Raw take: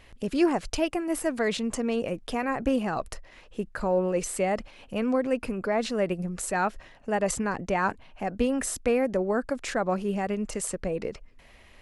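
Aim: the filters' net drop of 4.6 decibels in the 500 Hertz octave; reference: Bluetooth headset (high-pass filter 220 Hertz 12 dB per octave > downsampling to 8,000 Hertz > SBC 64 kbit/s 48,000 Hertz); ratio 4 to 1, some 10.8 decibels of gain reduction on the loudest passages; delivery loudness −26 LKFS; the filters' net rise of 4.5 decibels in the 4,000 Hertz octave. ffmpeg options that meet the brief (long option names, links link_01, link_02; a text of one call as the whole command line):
ffmpeg -i in.wav -af "equalizer=frequency=500:width_type=o:gain=-5.5,equalizer=frequency=4000:width_type=o:gain=6,acompressor=threshold=-34dB:ratio=4,highpass=220,aresample=8000,aresample=44100,volume=13.5dB" -ar 48000 -c:a sbc -b:a 64k out.sbc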